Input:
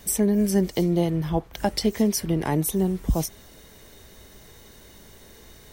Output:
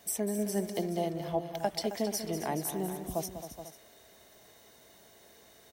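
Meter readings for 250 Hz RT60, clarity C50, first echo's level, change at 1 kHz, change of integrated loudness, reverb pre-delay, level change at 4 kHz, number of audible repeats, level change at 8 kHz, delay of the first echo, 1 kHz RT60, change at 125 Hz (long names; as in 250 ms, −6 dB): no reverb audible, no reverb audible, −11.0 dB, −4.5 dB, −10.0 dB, no reverb audible, −7.5 dB, 4, −7.5 dB, 195 ms, no reverb audible, −14.0 dB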